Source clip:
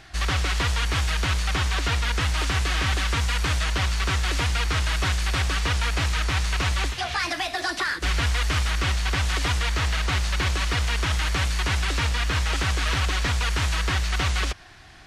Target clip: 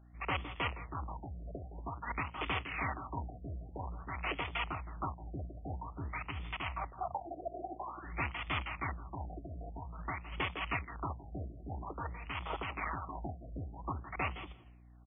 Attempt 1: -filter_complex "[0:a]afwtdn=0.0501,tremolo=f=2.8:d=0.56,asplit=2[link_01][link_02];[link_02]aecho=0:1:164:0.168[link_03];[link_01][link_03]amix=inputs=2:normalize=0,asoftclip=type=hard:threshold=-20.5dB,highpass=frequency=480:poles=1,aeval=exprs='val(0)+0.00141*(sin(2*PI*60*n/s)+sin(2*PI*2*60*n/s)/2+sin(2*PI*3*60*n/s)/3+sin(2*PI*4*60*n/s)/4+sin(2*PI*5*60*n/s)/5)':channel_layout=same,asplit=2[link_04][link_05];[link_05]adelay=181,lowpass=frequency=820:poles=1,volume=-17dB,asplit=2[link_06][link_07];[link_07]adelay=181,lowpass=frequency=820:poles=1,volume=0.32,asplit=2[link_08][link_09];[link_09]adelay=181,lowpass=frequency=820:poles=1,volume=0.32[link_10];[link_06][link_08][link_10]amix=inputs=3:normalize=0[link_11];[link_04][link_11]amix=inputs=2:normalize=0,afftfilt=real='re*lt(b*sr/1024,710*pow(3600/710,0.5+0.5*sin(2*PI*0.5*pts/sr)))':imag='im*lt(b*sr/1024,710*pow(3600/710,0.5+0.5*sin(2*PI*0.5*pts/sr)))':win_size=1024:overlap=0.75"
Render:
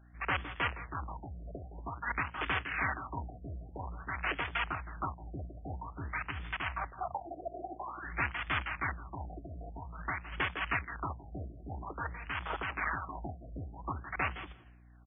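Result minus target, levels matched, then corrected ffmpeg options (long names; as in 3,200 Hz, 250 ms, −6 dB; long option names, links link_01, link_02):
2,000 Hz band +3.0 dB
-filter_complex "[0:a]afwtdn=0.0501,tremolo=f=2.8:d=0.56,asplit=2[link_01][link_02];[link_02]aecho=0:1:164:0.168[link_03];[link_01][link_03]amix=inputs=2:normalize=0,asoftclip=type=hard:threshold=-20.5dB,highpass=frequency=480:poles=1,equalizer=frequency=1600:width_type=o:width=0.37:gain=-14,aeval=exprs='val(0)+0.00141*(sin(2*PI*60*n/s)+sin(2*PI*2*60*n/s)/2+sin(2*PI*3*60*n/s)/3+sin(2*PI*4*60*n/s)/4+sin(2*PI*5*60*n/s)/5)':channel_layout=same,asplit=2[link_04][link_05];[link_05]adelay=181,lowpass=frequency=820:poles=1,volume=-17dB,asplit=2[link_06][link_07];[link_07]adelay=181,lowpass=frequency=820:poles=1,volume=0.32,asplit=2[link_08][link_09];[link_09]adelay=181,lowpass=frequency=820:poles=1,volume=0.32[link_10];[link_06][link_08][link_10]amix=inputs=3:normalize=0[link_11];[link_04][link_11]amix=inputs=2:normalize=0,afftfilt=real='re*lt(b*sr/1024,710*pow(3600/710,0.5+0.5*sin(2*PI*0.5*pts/sr)))':imag='im*lt(b*sr/1024,710*pow(3600/710,0.5+0.5*sin(2*PI*0.5*pts/sr)))':win_size=1024:overlap=0.75"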